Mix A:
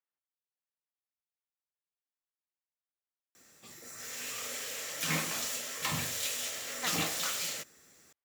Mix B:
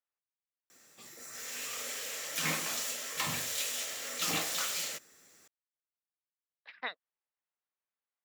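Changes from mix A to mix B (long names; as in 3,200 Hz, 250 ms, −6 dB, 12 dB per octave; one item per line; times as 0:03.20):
background: entry −2.65 s
master: add low-shelf EQ 170 Hz −8.5 dB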